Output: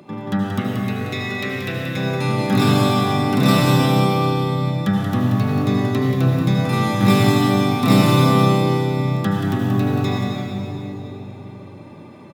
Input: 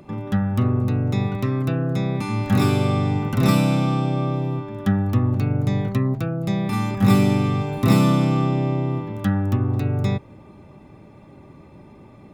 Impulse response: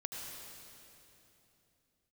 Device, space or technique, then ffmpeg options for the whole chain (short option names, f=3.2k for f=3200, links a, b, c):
PA in a hall: -filter_complex "[0:a]asettb=1/sr,asplit=3[a][b][c];[a]atrim=end=0.594[d];[b]atrim=start=0.59:end=1.97,asetpts=PTS-STARTPTS,afade=t=in:d=0.004:c=qsin,afade=t=out:st=1.376:d=0.004:c=qsin,equalizer=f=125:t=o:w=1:g=-8,equalizer=f=250:t=o:w=1:g=-6,equalizer=f=1k:t=o:w=1:g=-11,equalizer=f=2k:t=o:w=1:g=9[e];[c]atrim=start=1.966[f];[d][e]acrossfade=d=0.004:c1=hsin:c2=qsin[g];[g][f]acrossfade=d=0.004:c1=qsin:c2=hsin,highpass=160,equalizer=f=3.9k:t=o:w=0.53:g=4.5,aecho=1:1:181:0.501[h];[1:a]atrim=start_sample=2205[i];[h][i]afir=irnorm=-1:irlink=0,volume=5.5dB"